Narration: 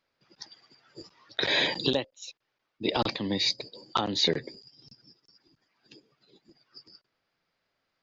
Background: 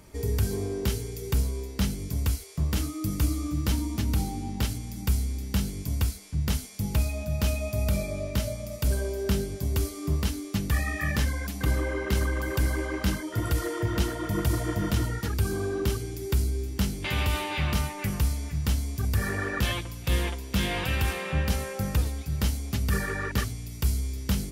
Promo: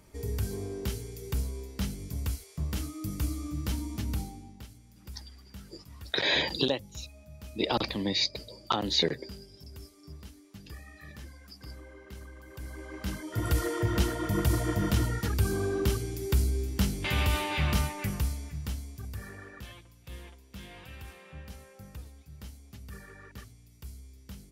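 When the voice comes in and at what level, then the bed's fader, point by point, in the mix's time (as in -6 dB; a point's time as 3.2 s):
4.75 s, -1.0 dB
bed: 4.14 s -6 dB
4.66 s -20 dB
12.44 s -20 dB
13.52 s -0.5 dB
17.83 s -0.5 dB
19.68 s -19 dB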